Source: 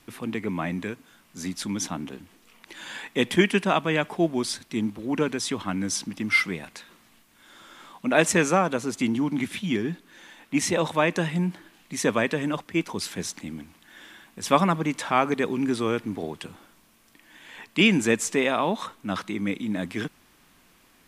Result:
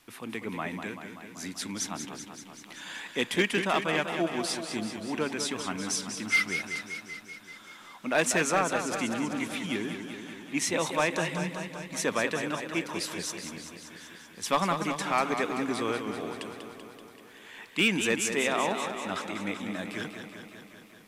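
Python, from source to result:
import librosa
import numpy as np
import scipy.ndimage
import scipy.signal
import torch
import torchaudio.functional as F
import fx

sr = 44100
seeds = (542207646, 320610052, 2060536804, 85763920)

p1 = fx.low_shelf(x, sr, hz=390.0, db=-8.5)
p2 = 10.0 ** (-16.0 / 20.0) * (np.abs((p1 / 10.0 ** (-16.0 / 20.0) + 3.0) % 4.0 - 2.0) - 1.0)
p3 = p1 + F.gain(torch.from_numpy(p2), -4.0).numpy()
p4 = fx.echo_warbled(p3, sr, ms=192, feedback_pct=70, rate_hz=2.8, cents=87, wet_db=-8)
y = F.gain(torch.from_numpy(p4), -6.5).numpy()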